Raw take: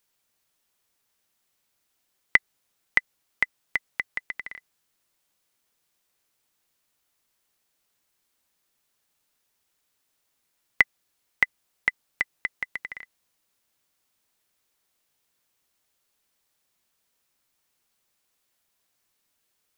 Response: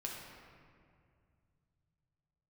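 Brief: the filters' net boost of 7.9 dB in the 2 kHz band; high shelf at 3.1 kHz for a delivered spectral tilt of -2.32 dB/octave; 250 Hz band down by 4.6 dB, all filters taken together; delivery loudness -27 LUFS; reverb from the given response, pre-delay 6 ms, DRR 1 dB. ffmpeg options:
-filter_complex "[0:a]equalizer=f=250:t=o:g=-6.5,equalizer=f=2000:t=o:g=6,highshelf=f=3100:g=7,asplit=2[s0][s1];[1:a]atrim=start_sample=2205,adelay=6[s2];[s1][s2]afir=irnorm=-1:irlink=0,volume=0.891[s3];[s0][s3]amix=inputs=2:normalize=0,volume=0.355"

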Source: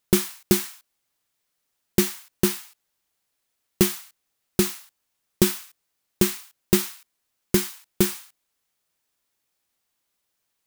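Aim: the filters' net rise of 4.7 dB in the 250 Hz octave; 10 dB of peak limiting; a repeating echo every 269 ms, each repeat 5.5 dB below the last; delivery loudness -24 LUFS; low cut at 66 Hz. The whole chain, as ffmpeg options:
-af "highpass=66,equalizer=f=250:t=o:g=7.5,alimiter=limit=0.335:level=0:latency=1,aecho=1:1:269|538|807|1076|1345|1614|1883:0.531|0.281|0.149|0.079|0.0419|0.0222|0.0118,volume=1.5"

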